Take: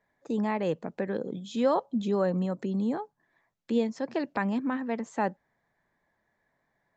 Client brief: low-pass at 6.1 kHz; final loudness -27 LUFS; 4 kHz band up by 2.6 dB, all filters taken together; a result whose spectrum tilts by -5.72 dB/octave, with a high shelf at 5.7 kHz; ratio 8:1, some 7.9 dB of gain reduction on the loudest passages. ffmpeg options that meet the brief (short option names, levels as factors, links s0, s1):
-af "lowpass=6100,equalizer=f=4000:t=o:g=5,highshelf=f=5700:g=-3.5,acompressor=threshold=0.0398:ratio=8,volume=2.37"